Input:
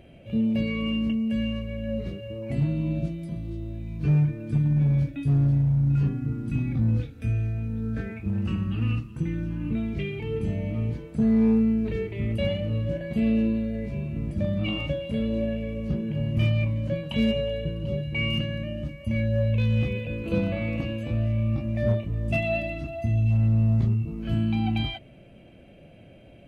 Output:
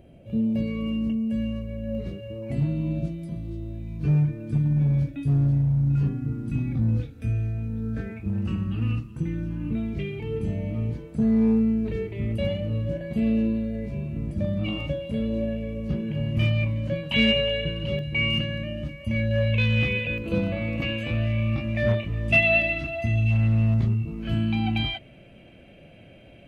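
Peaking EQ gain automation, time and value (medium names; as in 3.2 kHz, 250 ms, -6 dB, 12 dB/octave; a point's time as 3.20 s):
peaking EQ 2.4 kHz 2.1 oct
-8.5 dB
from 1.95 s -2.5 dB
from 15.89 s +3.5 dB
from 17.12 s +13.5 dB
from 17.99 s +4.5 dB
from 19.31 s +12 dB
from 20.18 s +1 dB
from 20.82 s +12 dB
from 23.74 s +5 dB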